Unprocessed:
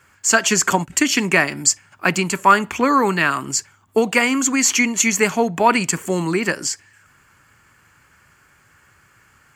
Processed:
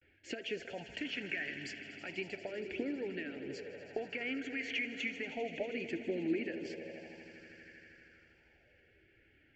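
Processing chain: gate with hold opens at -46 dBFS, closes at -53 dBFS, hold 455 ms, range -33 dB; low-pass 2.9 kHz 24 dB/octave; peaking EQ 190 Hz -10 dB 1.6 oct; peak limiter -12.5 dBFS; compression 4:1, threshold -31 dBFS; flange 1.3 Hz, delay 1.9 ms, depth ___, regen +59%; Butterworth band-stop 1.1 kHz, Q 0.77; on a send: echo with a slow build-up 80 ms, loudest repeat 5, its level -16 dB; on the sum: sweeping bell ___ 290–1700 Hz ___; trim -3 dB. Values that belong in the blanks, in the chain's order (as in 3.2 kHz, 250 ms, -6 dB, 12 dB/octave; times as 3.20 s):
2.4 ms, 0.32 Hz, +11 dB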